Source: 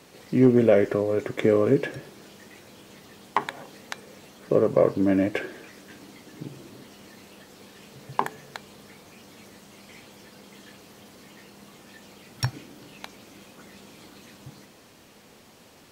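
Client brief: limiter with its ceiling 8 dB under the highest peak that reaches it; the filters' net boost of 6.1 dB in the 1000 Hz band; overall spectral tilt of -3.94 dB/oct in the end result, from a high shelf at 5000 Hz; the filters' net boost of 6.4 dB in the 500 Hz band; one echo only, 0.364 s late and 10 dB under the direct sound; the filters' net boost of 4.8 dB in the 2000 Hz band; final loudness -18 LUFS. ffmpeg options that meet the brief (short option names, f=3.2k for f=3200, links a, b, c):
-af "equalizer=f=500:t=o:g=6.5,equalizer=f=1k:t=o:g=4.5,equalizer=f=2k:t=o:g=4.5,highshelf=f=5k:g=-3.5,alimiter=limit=-8.5dB:level=0:latency=1,aecho=1:1:364:0.316,volume=4dB"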